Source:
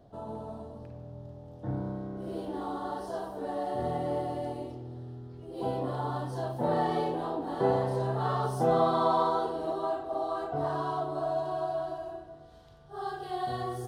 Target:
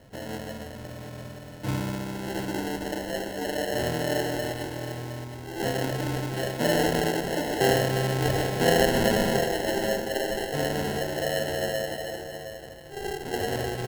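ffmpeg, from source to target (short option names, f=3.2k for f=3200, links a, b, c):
-af "highshelf=f=1.6k:t=q:w=3:g=8.5,acrusher=samples=37:mix=1:aa=0.000001,aecho=1:1:715:0.316,volume=5dB"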